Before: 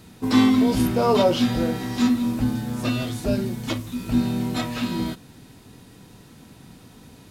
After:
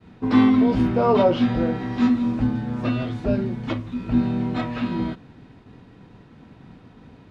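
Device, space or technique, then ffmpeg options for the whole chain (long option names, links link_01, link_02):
hearing-loss simulation: -filter_complex "[0:a]asettb=1/sr,asplit=3[link_01][link_02][link_03];[link_01]atrim=end=2.024[link_04];[link_02]atrim=start=2.02:end=2.47,asetpts=PTS-STARTPTS,afade=type=in:duration=0.004:curve=qsin,afade=type=out:start_time=0.446:duration=0.004:curve=qsin,equalizer=frequency=7200:width=0.86:gain=5[link_05];[link_03]atrim=start=2.466[link_06];[link_04][link_05]acrossfade=duration=0.004:curve1=hsin:curve2=qsin[link_07];[link_07][link_06]acrossfade=duration=0.004:curve1=qsin:curve2=hsin,lowpass=2300,agate=range=-33dB:threshold=-46dB:ratio=3:detection=peak,volume=1dB"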